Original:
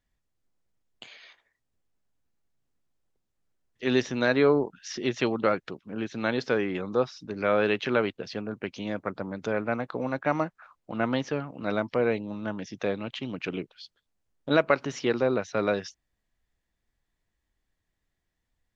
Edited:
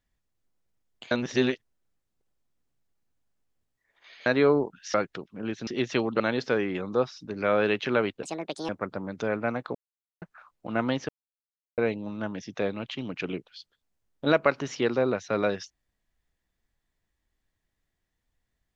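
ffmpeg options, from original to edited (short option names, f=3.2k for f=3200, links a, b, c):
-filter_complex "[0:a]asplit=12[a][b][c][d][e][f][g][h][i][j][k][l];[a]atrim=end=1.112[m];[b]atrim=start=1.108:end=4.262,asetpts=PTS-STARTPTS,areverse[n];[c]atrim=start=4.258:end=4.942[o];[d]atrim=start=5.468:end=6.202[p];[e]atrim=start=4.938:end=5.472[q];[f]atrim=start=6.198:end=8.234[r];[g]atrim=start=8.23:end=8.93,asetpts=PTS-STARTPTS,asetrate=67473,aresample=44100,atrim=end_sample=20176,asetpts=PTS-STARTPTS[s];[h]atrim=start=8.926:end=9.99,asetpts=PTS-STARTPTS,afade=t=out:st=1.06:d=0.004:c=hsin[t];[i]atrim=start=9.99:end=10.46,asetpts=PTS-STARTPTS,volume=0[u];[j]atrim=start=10.46:end=11.33,asetpts=PTS-STARTPTS,afade=t=in:d=0.004:c=hsin,afade=t=out:st=0.866:d=0.004:c=hsin[v];[k]atrim=start=11.33:end=12.02,asetpts=PTS-STARTPTS,volume=0[w];[l]atrim=start=12.02,asetpts=PTS-STARTPTS,afade=t=in:d=0.004:c=hsin[x];[m][n]acrossfade=d=0.004:c1=hsin:c2=hsin[y];[y][o]acrossfade=d=0.004:c1=hsin:c2=hsin[z];[z][p]acrossfade=d=0.004:c1=hsin:c2=hsin[aa];[aa][q]acrossfade=d=0.004:c1=hsin:c2=hsin[ab];[ab][r]acrossfade=d=0.004:c1=hsin:c2=hsin[ac];[ac][s]acrossfade=d=0.004:c1=hsin:c2=hsin[ad];[t][u][v][w][x]concat=n=5:v=0:a=1[ae];[ad][ae]acrossfade=d=0.004:c1=hsin:c2=hsin"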